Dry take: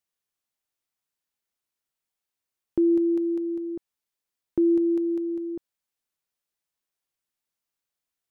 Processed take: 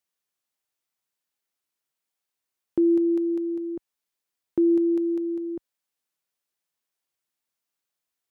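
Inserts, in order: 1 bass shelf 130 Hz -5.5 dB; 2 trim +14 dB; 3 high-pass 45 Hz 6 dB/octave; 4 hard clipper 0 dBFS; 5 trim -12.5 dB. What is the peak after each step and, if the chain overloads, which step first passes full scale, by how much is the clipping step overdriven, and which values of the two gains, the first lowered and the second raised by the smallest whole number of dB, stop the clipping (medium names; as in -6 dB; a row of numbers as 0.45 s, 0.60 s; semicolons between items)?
-17.0 dBFS, -3.0 dBFS, -2.5 dBFS, -2.5 dBFS, -15.0 dBFS; nothing clips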